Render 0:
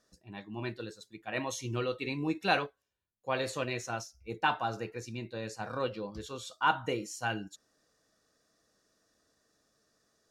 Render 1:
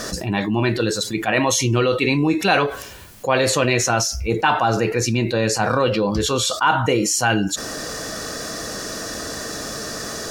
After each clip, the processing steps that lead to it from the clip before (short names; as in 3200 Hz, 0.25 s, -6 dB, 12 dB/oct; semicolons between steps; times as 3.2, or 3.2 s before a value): notch 3700 Hz, Q 22; fast leveller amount 70%; gain +8.5 dB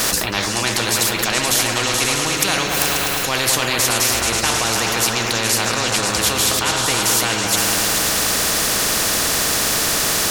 repeats that get brighter 0.107 s, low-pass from 200 Hz, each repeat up 2 oct, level -3 dB; spectral compressor 4:1; gain +1 dB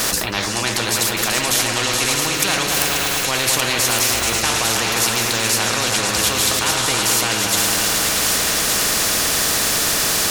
thin delay 1.169 s, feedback 49%, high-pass 1600 Hz, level -5 dB; gain -1 dB